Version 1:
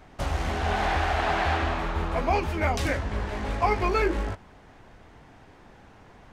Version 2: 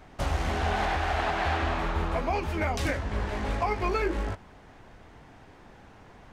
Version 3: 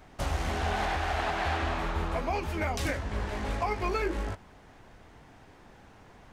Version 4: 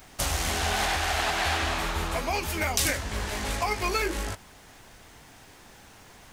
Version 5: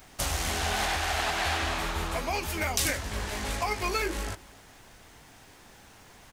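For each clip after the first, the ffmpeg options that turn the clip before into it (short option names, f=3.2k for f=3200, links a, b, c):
-af "alimiter=limit=-17dB:level=0:latency=1:release=314"
-af "highshelf=f=6k:g=5.5,volume=-2.5dB"
-af "crystalizer=i=5.5:c=0"
-af "aecho=1:1:270:0.075,volume=-2dB"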